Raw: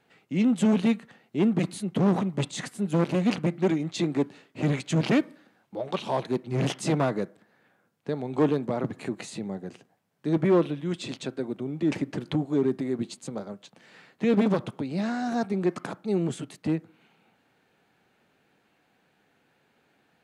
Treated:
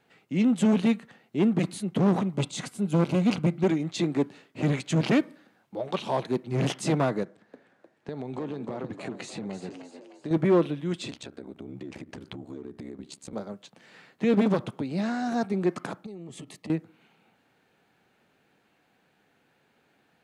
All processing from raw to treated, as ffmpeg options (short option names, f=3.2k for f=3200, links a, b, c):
-filter_complex "[0:a]asettb=1/sr,asplit=3[a][b][c];[a]atrim=end=2.344[d];[b]atrim=start=2.34:end=3.64,asetpts=PTS-STARTPTS,afade=t=in:d=0.004:c=qsin,afade=t=out:st=1.296:d=0.004:c=qsin,bandreject=f=1.8k:w=6.1,asubboost=boost=3:cutoff=230[e];[c]atrim=start=3.636[f];[d][e]acrossfade=d=0.004:c1=hsin:c2=qsin[g];[g][f]acrossfade=d=0.004:c1=qsin:c2=hsin,asettb=1/sr,asplit=3[h][i][j];[h]atrim=end=7.234[k];[i]atrim=start=7.23:end=10.31,asetpts=PTS-STARTPTS,afade=t=in:d=0.004:c=qsin,afade=t=out:st=3.076:d=0.004:c=qsin,lowpass=7.9k,acompressor=threshold=-30dB:ratio=6:attack=3.2:release=140:knee=1:detection=peak,asplit=6[l][m][n][o][p][q];[m]adelay=305,afreqshift=71,volume=-9.5dB[r];[n]adelay=610,afreqshift=142,volume=-15.9dB[s];[o]adelay=915,afreqshift=213,volume=-22.3dB[t];[p]adelay=1220,afreqshift=284,volume=-28.6dB[u];[q]adelay=1525,afreqshift=355,volume=-35dB[v];[l][r][s][t][u][v]amix=inputs=6:normalize=0,atrim=end_sample=135828[w];[j]atrim=start=10.306[x];[k][w]acrossfade=d=0.004:c1=hsin:c2=qsin[y];[y][x]acrossfade=d=0.004:c1=qsin:c2=hsin,asettb=1/sr,asplit=3[z][aa][ab];[z]atrim=end=11.104[ac];[aa]atrim=start=11.1:end=13.33,asetpts=PTS-STARTPTS,afade=t=in:d=0.004:c=qsin,afade=t=out:st=2.226:d=0.004:c=qsin,acompressor=threshold=-33dB:ratio=12:attack=3.2:release=140:knee=1:detection=peak,aeval=exprs='val(0)*sin(2*PI*34*n/s)':c=same[ad];[ab]atrim=start=13.326[ae];[ac][ad]acrossfade=d=0.004:c1=hsin:c2=qsin[af];[af][ae]acrossfade=d=0.004:c1=qsin:c2=hsin,asettb=1/sr,asplit=3[ag][ah][ai];[ag]atrim=end=16.064[aj];[ah]atrim=start=16.06:end=16.7,asetpts=PTS-STARTPTS,afade=t=in:d=0.004:c=qsin,afade=t=out:st=0.636:d=0.004:c=qsin,asuperstop=centerf=1500:order=20:qfactor=4.7,acompressor=threshold=-37dB:ratio=20:attack=3.2:release=140:knee=1:detection=peak[ak];[ai]atrim=start=16.696[al];[aj][ak]acrossfade=d=0.004:c1=hsin:c2=qsin[am];[am][al]acrossfade=d=0.004:c1=qsin:c2=hsin"